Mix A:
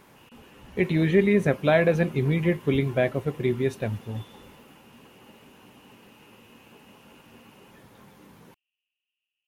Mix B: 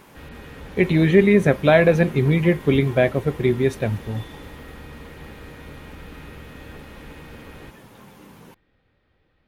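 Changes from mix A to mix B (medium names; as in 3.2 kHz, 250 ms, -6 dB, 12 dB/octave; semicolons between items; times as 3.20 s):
speech +5.5 dB; background: remove Butterworth band-pass 2.8 kHz, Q 8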